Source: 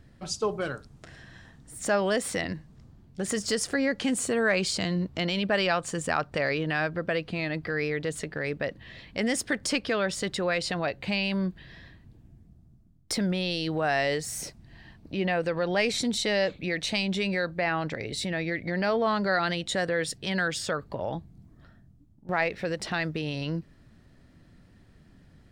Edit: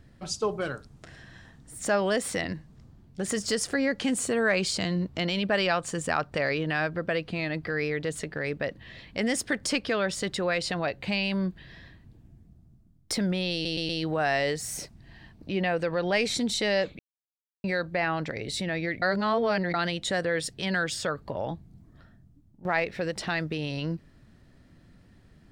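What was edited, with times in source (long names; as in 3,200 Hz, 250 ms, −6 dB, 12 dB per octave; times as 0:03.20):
0:13.53: stutter 0.12 s, 4 plays
0:16.63–0:17.28: silence
0:18.66–0:19.38: reverse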